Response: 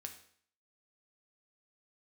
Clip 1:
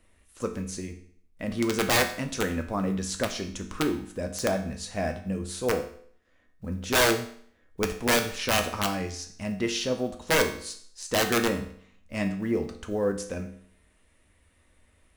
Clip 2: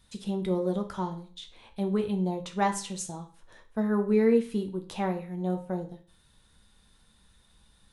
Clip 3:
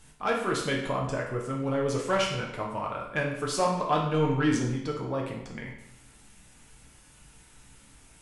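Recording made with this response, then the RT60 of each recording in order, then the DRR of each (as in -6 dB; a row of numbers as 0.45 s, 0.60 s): 1; 0.55 s, 0.40 s, 0.75 s; 4.5 dB, 4.5 dB, -2.0 dB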